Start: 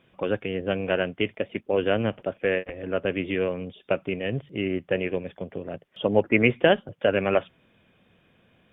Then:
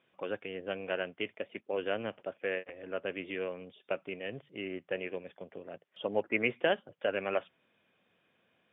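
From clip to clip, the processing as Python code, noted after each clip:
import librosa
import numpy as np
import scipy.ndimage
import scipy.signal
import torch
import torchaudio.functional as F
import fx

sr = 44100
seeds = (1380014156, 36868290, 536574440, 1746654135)

y = fx.highpass(x, sr, hz=490.0, slope=6)
y = fx.air_absorb(y, sr, metres=78.0)
y = y * 10.0 ** (-7.0 / 20.0)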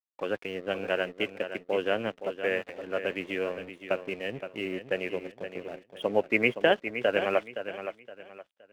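y = np.sign(x) * np.maximum(np.abs(x) - 10.0 ** (-56.0 / 20.0), 0.0)
y = fx.echo_feedback(y, sr, ms=518, feedback_pct=30, wet_db=-10.0)
y = y * 10.0 ** (6.0 / 20.0)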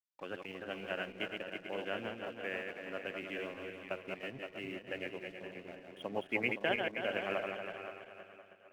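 y = fx.reverse_delay_fb(x, sr, ms=161, feedback_pct=58, wet_db=-4)
y = fx.peak_eq(y, sr, hz=470.0, db=-6.0, octaves=0.73)
y = y * 10.0 ** (-9.0 / 20.0)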